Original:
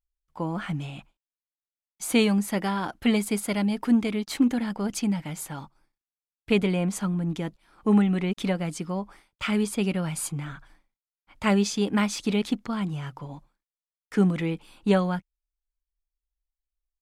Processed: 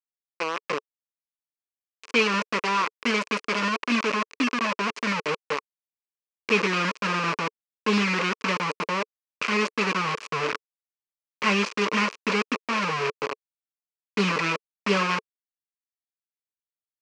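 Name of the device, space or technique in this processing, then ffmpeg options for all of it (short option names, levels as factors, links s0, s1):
hand-held game console: -af "asubboost=boost=6.5:cutoff=180,acrusher=bits=3:mix=0:aa=0.000001,highpass=440,equalizer=f=440:t=q:w=4:g=7,equalizer=f=740:t=q:w=4:g=-9,equalizer=f=1100:t=q:w=4:g=8,equalizer=f=2500:t=q:w=4:g=8,equalizer=f=3600:t=q:w=4:g=-6,lowpass=f=5600:w=0.5412,lowpass=f=5600:w=1.3066"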